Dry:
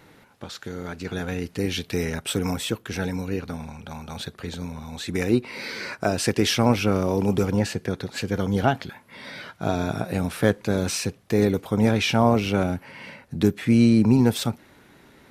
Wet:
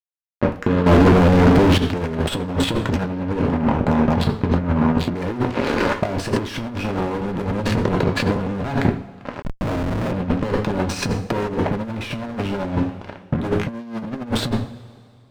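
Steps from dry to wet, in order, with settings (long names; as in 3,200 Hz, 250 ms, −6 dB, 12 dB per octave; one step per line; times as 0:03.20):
adaptive Wiener filter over 25 samples
fuzz pedal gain 37 dB, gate −40 dBFS
coupled-rooms reverb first 0.43 s, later 2.3 s, from −26 dB, DRR 2.5 dB
compressor whose output falls as the input rises −19 dBFS, ratio −0.5
0:00.86–0:01.78: power curve on the samples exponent 0.35
0:09.42–0:10.12: comparator with hysteresis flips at −24.5 dBFS
low-pass filter 1,600 Hz 6 dB per octave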